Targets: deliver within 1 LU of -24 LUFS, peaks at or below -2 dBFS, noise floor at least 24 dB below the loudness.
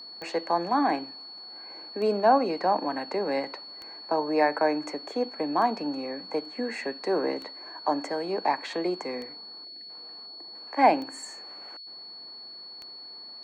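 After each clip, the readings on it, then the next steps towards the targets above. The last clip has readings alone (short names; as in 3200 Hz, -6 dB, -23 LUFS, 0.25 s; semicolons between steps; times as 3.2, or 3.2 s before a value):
clicks 8; steady tone 4400 Hz; tone level -41 dBFS; loudness -28.0 LUFS; peak -8.0 dBFS; loudness target -24.0 LUFS
-> de-click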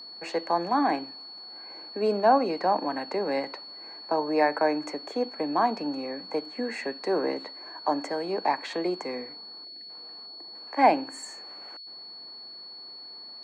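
clicks 0; steady tone 4400 Hz; tone level -41 dBFS
-> notch 4400 Hz, Q 30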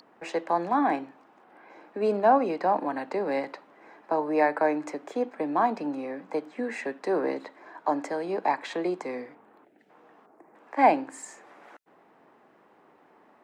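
steady tone none; loudness -27.5 LUFS; peak -7.5 dBFS; loudness target -24.0 LUFS
-> gain +3.5 dB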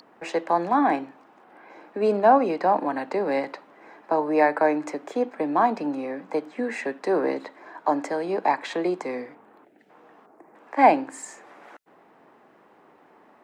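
loudness -24.0 LUFS; peak -4.0 dBFS; noise floor -56 dBFS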